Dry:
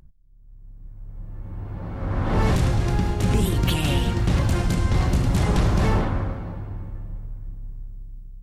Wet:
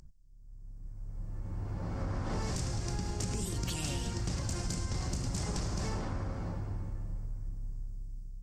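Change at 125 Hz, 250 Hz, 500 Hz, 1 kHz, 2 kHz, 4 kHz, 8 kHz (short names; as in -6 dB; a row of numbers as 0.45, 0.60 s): -13.5, -14.0, -14.0, -14.0, -14.0, -9.5, -2.0 dB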